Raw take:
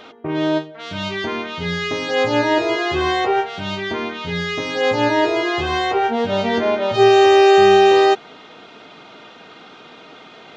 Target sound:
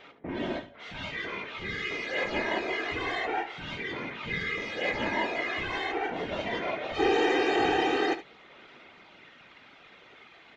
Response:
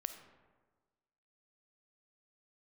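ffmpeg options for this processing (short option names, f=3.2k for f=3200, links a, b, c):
-filter_complex "[0:a]afftfilt=real='hypot(re,im)*cos(2*PI*random(0))':imag='hypot(re,im)*sin(2*PI*random(1))':win_size=512:overlap=0.75,aphaser=in_gain=1:out_gain=1:delay=2.9:decay=0.22:speed=0.23:type=sinusoidal,equalizer=f=2.1k:t=o:w=0.75:g=9.5,asplit=2[a][b];[b]aecho=0:1:72:0.2[c];[a][c]amix=inputs=2:normalize=0,volume=-9dB"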